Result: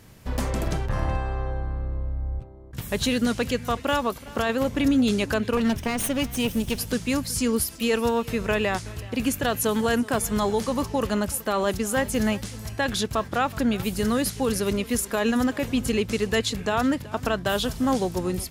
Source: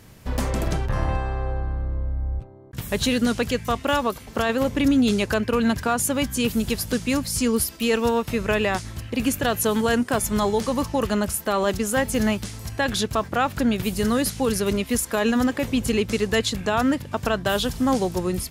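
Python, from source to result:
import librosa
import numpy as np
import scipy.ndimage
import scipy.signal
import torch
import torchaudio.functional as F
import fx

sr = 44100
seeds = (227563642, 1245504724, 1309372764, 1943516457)

p1 = fx.lower_of_two(x, sr, delay_ms=0.35, at=(5.57, 6.78))
p2 = p1 + fx.echo_single(p1, sr, ms=374, db=-20.5, dry=0)
y = p2 * librosa.db_to_amplitude(-2.0)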